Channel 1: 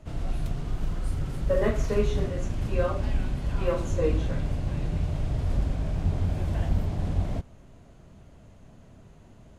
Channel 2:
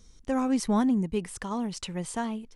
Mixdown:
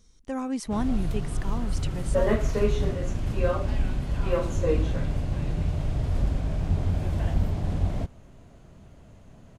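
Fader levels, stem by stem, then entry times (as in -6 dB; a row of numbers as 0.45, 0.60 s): +1.0, -4.0 dB; 0.65, 0.00 s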